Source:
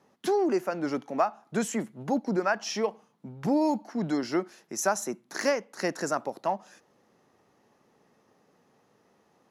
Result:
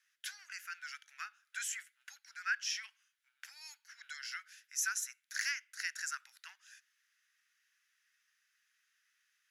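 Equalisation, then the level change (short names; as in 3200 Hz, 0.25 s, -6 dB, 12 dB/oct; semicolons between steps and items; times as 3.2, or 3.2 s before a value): Chebyshev high-pass 1500 Hz, order 5; notch 4200 Hz, Q 20; -1.5 dB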